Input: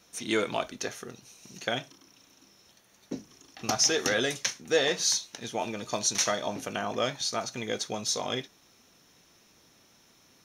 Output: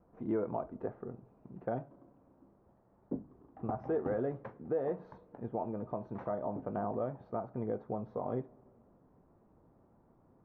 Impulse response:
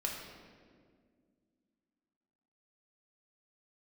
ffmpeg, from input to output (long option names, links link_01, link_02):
-filter_complex "[0:a]lowpass=frequency=1000:width=0.5412,lowpass=frequency=1000:width=1.3066,lowshelf=frequency=110:gain=8,alimiter=limit=-23.5dB:level=0:latency=1:release=265,asplit=2[link_01][link_02];[1:a]atrim=start_sample=2205[link_03];[link_02][link_03]afir=irnorm=-1:irlink=0,volume=-23.5dB[link_04];[link_01][link_04]amix=inputs=2:normalize=0,volume=-1.5dB"